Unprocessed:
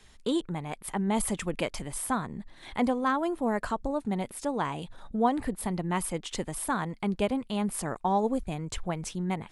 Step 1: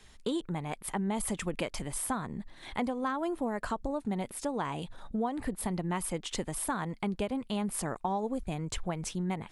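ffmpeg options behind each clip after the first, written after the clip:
-af "acompressor=threshold=-28dB:ratio=10"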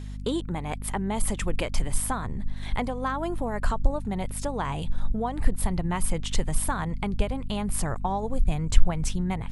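-af "asubboost=boost=10:cutoff=79,aeval=exprs='val(0)+0.0112*(sin(2*PI*50*n/s)+sin(2*PI*2*50*n/s)/2+sin(2*PI*3*50*n/s)/3+sin(2*PI*4*50*n/s)/4+sin(2*PI*5*50*n/s)/5)':c=same,volume=4.5dB"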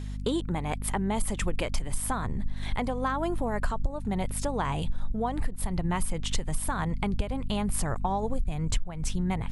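-af "acompressor=threshold=-23dB:ratio=16,volume=1dB"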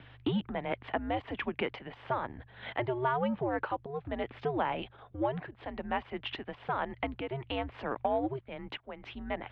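-filter_complex "[0:a]asplit=2[a][b];[b]asoftclip=type=tanh:threshold=-24dB,volume=-9.5dB[c];[a][c]amix=inputs=2:normalize=0,highpass=f=300:t=q:w=0.5412,highpass=f=300:t=q:w=1.307,lowpass=f=3.3k:t=q:w=0.5176,lowpass=f=3.3k:t=q:w=0.7071,lowpass=f=3.3k:t=q:w=1.932,afreqshift=-130,volume=-2dB"

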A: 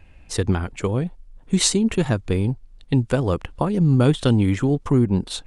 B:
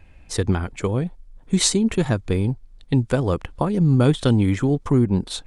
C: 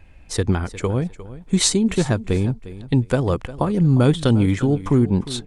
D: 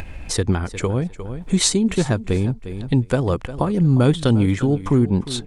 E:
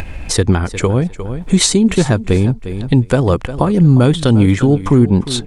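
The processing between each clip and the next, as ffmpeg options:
-af "bandreject=f=2.8k:w=16"
-af "aecho=1:1:354|708:0.158|0.0365,volume=1dB"
-af "acompressor=mode=upward:threshold=-19dB:ratio=2.5"
-af "alimiter=level_in=8dB:limit=-1dB:release=50:level=0:latency=1,volume=-1dB"

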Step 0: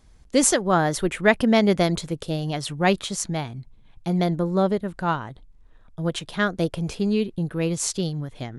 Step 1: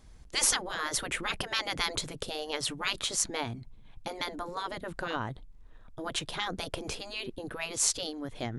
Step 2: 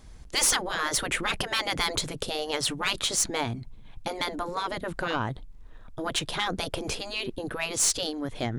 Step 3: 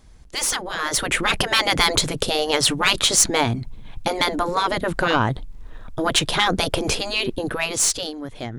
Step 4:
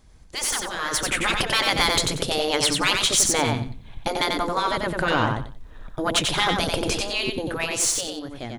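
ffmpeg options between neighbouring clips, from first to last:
-af "afftfilt=real='re*lt(hypot(re,im),0.2)':imag='im*lt(hypot(re,im),0.2)':win_size=1024:overlap=0.75"
-af "aeval=exprs='(tanh(12.6*val(0)+0.15)-tanh(0.15))/12.6':c=same,volume=6dB"
-af "dynaudnorm=f=120:g=17:m=11dB,volume=-1dB"
-af "aecho=1:1:92|184|276:0.631|0.139|0.0305,volume=-3.5dB"

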